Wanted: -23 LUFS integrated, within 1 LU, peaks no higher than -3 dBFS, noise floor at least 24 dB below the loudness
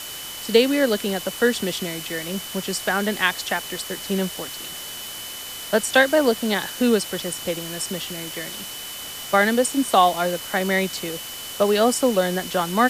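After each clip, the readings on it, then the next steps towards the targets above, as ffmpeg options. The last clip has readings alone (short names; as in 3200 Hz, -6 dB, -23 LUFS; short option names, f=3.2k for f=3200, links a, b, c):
steady tone 3000 Hz; tone level -37 dBFS; noise floor -34 dBFS; noise floor target -47 dBFS; loudness -22.5 LUFS; peak -3.0 dBFS; loudness target -23.0 LUFS
-> -af "bandreject=f=3k:w=30"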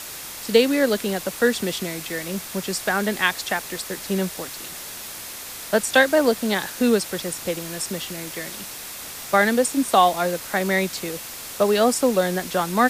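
steady tone none; noise floor -36 dBFS; noise floor target -47 dBFS
-> -af "afftdn=nr=11:nf=-36"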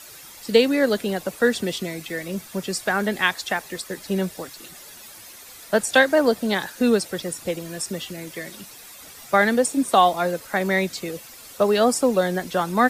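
noise floor -43 dBFS; noise floor target -46 dBFS
-> -af "afftdn=nr=6:nf=-43"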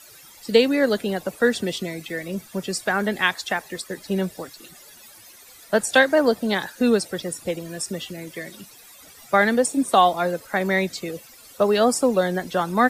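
noise floor -47 dBFS; loudness -22.0 LUFS; peak -3.5 dBFS; loudness target -23.0 LUFS
-> -af "volume=-1dB"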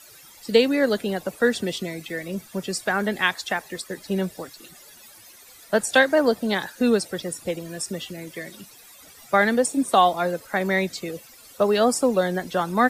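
loudness -23.0 LUFS; peak -4.5 dBFS; noise floor -48 dBFS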